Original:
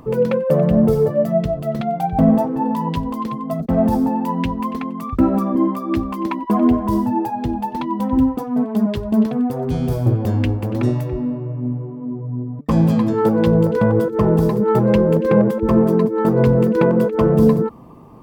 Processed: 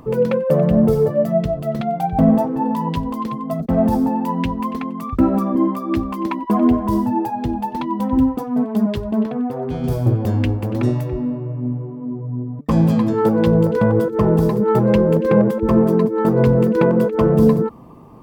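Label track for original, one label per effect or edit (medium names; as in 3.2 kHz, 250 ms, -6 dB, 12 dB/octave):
9.110000	9.840000	tone controls bass -6 dB, treble -11 dB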